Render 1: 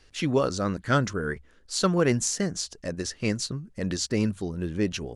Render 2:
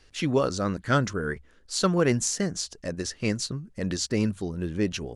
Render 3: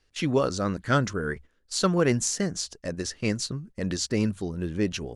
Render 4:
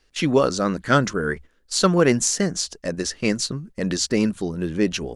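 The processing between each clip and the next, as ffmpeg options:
-af anull
-af "agate=range=0.282:threshold=0.00708:ratio=16:detection=peak"
-af "equalizer=f=100:w=3.2:g=-14,volume=2"

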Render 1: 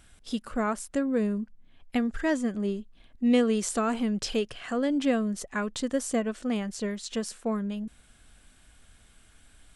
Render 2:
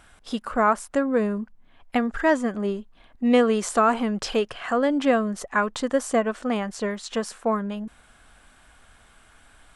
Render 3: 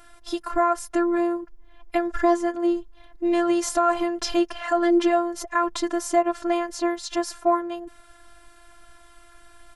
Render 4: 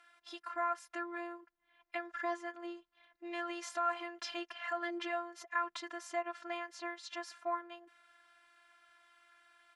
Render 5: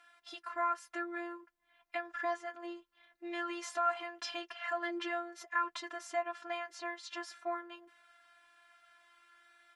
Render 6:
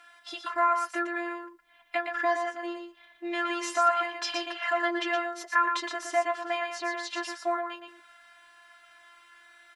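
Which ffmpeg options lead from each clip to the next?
-af "equalizer=f=1000:w=0.61:g=12"
-af "alimiter=limit=0.188:level=0:latency=1:release=114,afftfilt=real='hypot(re,im)*cos(PI*b)':imag='0':win_size=512:overlap=0.75,aecho=1:1:6:0.33,volume=1.88"
-af "bandpass=f=2100:t=q:w=1:csg=0,volume=0.422"
-af "flanger=delay=7:depth=1.2:regen=-40:speed=0.47:shape=sinusoidal,volume=1.78"
-af "aecho=1:1:118:0.501,volume=2.66"

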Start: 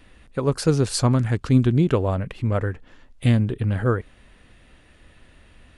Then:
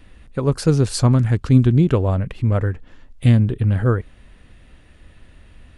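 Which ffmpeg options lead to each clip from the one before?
-af "lowshelf=f=200:g=7"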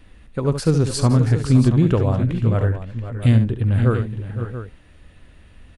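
-af "aecho=1:1:70|515|532|681:0.335|0.251|0.178|0.251,volume=0.841"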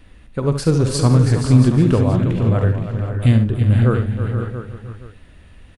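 -af "aecho=1:1:48|324|472:0.224|0.299|0.299,volume=1.19"

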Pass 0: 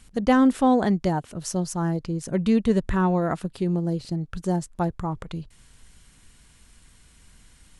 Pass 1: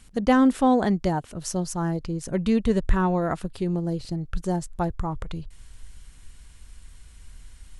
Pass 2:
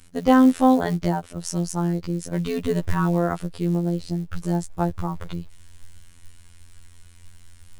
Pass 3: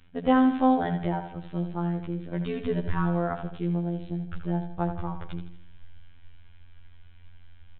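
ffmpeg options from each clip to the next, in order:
-af "asubboost=boost=3.5:cutoff=86"
-af "acrusher=bits=7:mode=log:mix=0:aa=0.000001,afftfilt=real='hypot(re,im)*cos(PI*b)':imag='0':win_size=2048:overlap=0.75,volume=1.58"
-filter_complex "[0:a]asplit=2[s0][s1];[s1]aecho=0:1:80|160|240|320|400:0.355|0.16|0.0718|0.0323|0.0145[s2];[s0][s2]amix=inputs=2:normalize=0,aresample=8000,aresample=44100,volume=0.562"

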